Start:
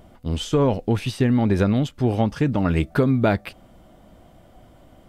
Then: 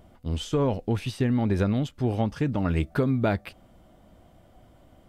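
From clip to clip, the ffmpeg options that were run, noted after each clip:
ffmpeg -i in.wav -af "equalizer=frequency=81:width_type=o:width=0.77:gain=3,volume=-5.5dB" out.wav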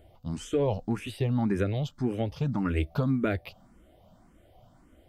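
ffmpeg -i in.wav -filter_complex "[0:a]asplit=2[link_01][link_02];[link_02]afreqshift=1.8[link_03];[link_01][link_03]amix=inputs=2:normalize=1" out.wav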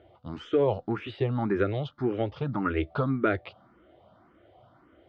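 ffmpeg -i in.wav -af "highpass=120,equalizer=frequency=170:width_type=q:width=4:gain=-9,equalizer=frequency=240:width_type=q:width=4:gain=-6,equalizer=frequency=360:width_type=q:width=4:gain=4,equalizer=frequency=1300:width_type=q:width=4:gain=7,equalizer=frequency=2600:width_type=q:width=4:gain=-4,lowpass=frequency=3600:width=0.5412,lowpass=frequency=3600:width=1.3066,volume=2.5dB" out.wav

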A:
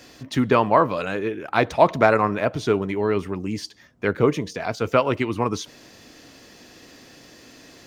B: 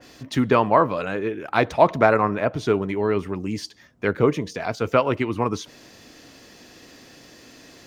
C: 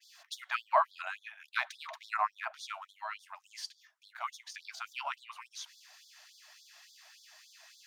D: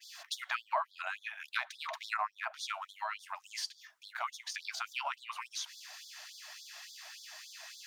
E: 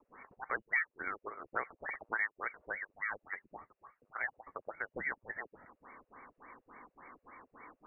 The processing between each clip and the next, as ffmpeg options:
ffmpeg -i in.wav -af "adynamicequalizer=threshold=0.0158:dfrequency=2700:dqfactor=0.7:tfrequency=2700:tqfactor=0.7:attack=5:release=100:ratio=0.375:range=3.5:mode=cutabove:tftype=highshelf" out.wav
ffmpeg -i in.wav -af "afftfilt=real='re*gte(b*sr/1024,590*pow(3400/590,0.5+0.5*sin(2*PI*3.5*pts/sr)))':imag='im*gte(b*sr/1024,590*pow(3400/590,0.5+0.5*sin(2*PI*3.5*pts/sr)))':win_size=1024:overlap=0.75,volume=-7dB" out.wav
ffmpeg -i in.wav -af "acompressor=threshold=-45dB:ratio=2.5,volume=8dB" out.wav
ffmpeg -i in.wav -af "lowpass=frequency=2500:width_type=q:width=0.5098,lowpass=frequency=2500:width_type=q:width=0.6013,lowpass=frequency=2500:width_type=q:width=0.9,lowpass=frequency=2500:width_type=q:width=2.563,afreqshift=-2900" out.wav

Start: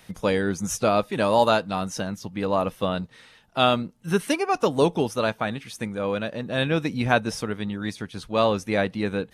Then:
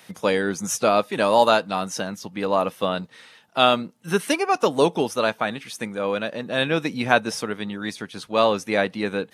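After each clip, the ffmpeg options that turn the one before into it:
ffmpeg -i in.wav -af "highpass=150,lowshelf=frequency=330:gain=-5,volume=3.5dB" out.wav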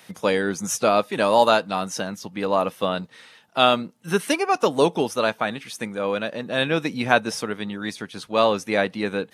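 ffmpeg -i in.wav -af anull out.wav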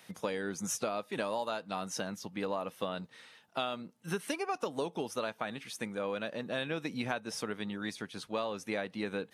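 ffmpeg -i in.wav -af "acompressor=threshold=-23dB:ratio=12,volume=-7.5dB" out.wav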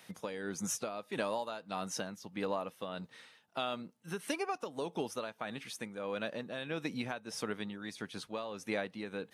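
ffmpeg -i in.wav -af "tremolo=f=1.6:d=0.51" out.wav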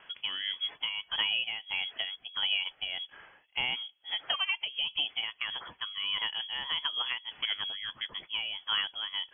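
ffmpeg -i in.wav -af "lowpass=frequency=3000:width_type=q:width=0.5098,lowpass=frequency=3000:width_type=q:width=0.6013,lowpass=frequency=3000:width_type=q:width=0.9,lowpass=frequency=3000:width_type=q:width=2.563,afreqshift=-3500,volume=5dB" out.wav

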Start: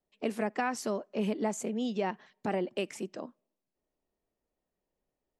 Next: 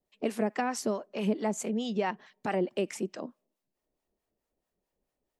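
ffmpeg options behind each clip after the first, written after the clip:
ffmpeg -i in.wav -filter_complex "[0:a]acrossover=split=700[link_01][link_02];[link_01]aeval=exprs='val(0)*(1-0.7/2+0.7/2*cos(2*PI*4.6*n/s))':channel_layout=same[link_03];[link_02]aeval=exprs='val(0)*(1-0.7/2-0.7/2*cos(2*PI*4.6*n/s))':channel_layout=same[link_04];[link_03][link_04]amix=inputs=2:normalize=0,volume=5dB" out.wav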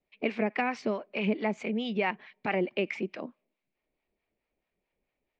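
ffmpeg -i in.wav -af "lowpass=frequency=4200:width=0.5412,lowpass=frequency=4200:width=1.3066,equalizer=frequency=2300:width=3.3:gain=13.5" out.wav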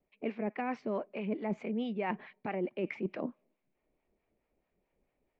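ffmpeg -i in.wav -af "lowpass=frequency=1000:poles=1,areverse,acompressor=threshold=-37dB:ratio=10,areverse,volume=6dB" out.wav

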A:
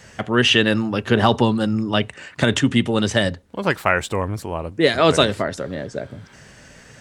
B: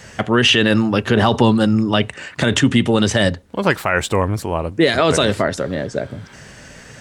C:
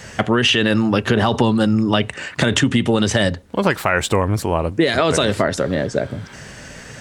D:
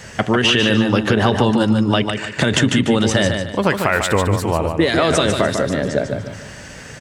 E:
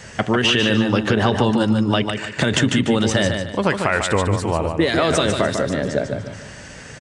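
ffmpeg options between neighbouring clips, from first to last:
ffmpeg -i in.wav -af "alimiter=limit=-9.5dB:level=0:latency=1:release=29,volume=5.5dB" out.wav
ffmpeg -i in.wav -af "acompressor=threshold=-15dB:ratio=6,volume=3dB" out.wav
ffmpeg -i in.wav -af "aecho=1:1:148|296|444|592:0.501|0.17|0.0579|0.0197" out.wav
ffmpeg -i in.wav -af "aresample=22050,aresample=44100,volume=-2dB" out.wav

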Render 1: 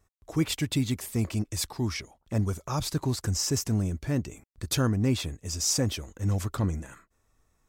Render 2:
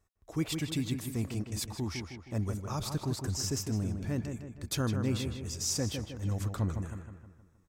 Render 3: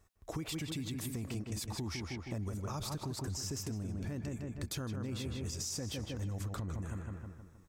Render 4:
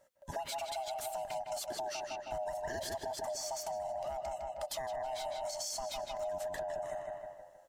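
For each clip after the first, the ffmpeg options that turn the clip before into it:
ffmpeg -i in.wav -filter_complex "[0:a]asplit=2[link_01][link_02];[link_02]adelay=157,lowpass=frequency=2900:poles=1,volume=-6dB,asplit=2[link_03][link_04];[link_04]adelay=157,lowpass=frequency=2900:poles=1,volume=0.5,asplit=2[link_05][link_06];[link_06]adelay=157,lowpass=frequency=2900:poles=1,volume=0.5,asplit=2[link_07][link_08];[link_08]adelay=157,lowpass=frequency=2900:poles=1,volume=0.5,asplit=2[link_09][link_10];[link_10]adelay=157,lowpass=frequency=2900:poles=1,volume=0.5,asplit=2[link_11][link_12];[link_12]adelay=157,lowpass=frequency=2900:poles=1,volume=0.5[link_13];[link_01][link_03][link_05][link_07][link_09][link_11][link_13]amix=inputs=7:normalize=0,volume=-6dB" out.wav
ffmpeg -i in.wav -af "alimiter=level_in=6dB:limit=-24dB:level=0:latency=1:release=69,volume=-6dB,acompressor=threshold=-43dB:ratio=5,volume=6.5dB" out.wav
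ffmpeg -i in.wav -af "afftfilt=real='real(if(lt(b,1008),b+24*(1-2*mod(floor(b/24),2)),b),0)':imag='imag(if(lt(b,1008),b+24*(1-2*mod(floor(b/24),2)),b),0)':win_size=2048:overlap=0.75" out.wav

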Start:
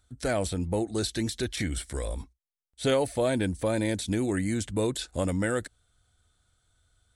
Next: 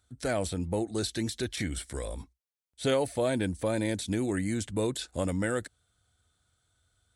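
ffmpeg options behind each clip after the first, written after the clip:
ffmpeg -i in.wav -af "highpass=62,volume=-2dB" out.wav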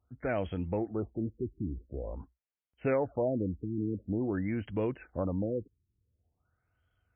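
ffmpeg -i in.wav -af "afftfilt=real='re*lt(b*sr/1024,420*pow(3400/420,0.5+0.5*sin(2*PI*0.47*pts/sr)))':imag='im*lt(b*sr/1024,420*pow(3400/420,0.5+0.5*sin(2*PI*0.47*pts/sr)))':win_size=1024:overlap=0.75,volume=-2dB" out.wav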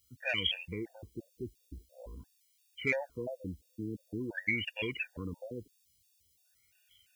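ffmpeg -i in.wav -af "aexciter=amount=15:drive=9.7:freq=2100,afftfilt=real='re*gt(sin(2*PI*2.9*pts/sr)*(1-2*mod(floor(b*sr/1024/480),2)),0)':imag='im*gt(sin(2*PI*2.9*pts/sr)*(1-2*mod(floor(b*sr/1024/480),2)),0)':win_size=1024:overlap=0.75,volume=-5.5dB" out.wav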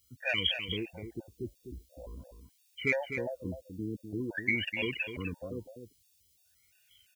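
ffmpeg -i in.wav -af "aecho=1:1:252:0.376,volume=2dB" out.wav

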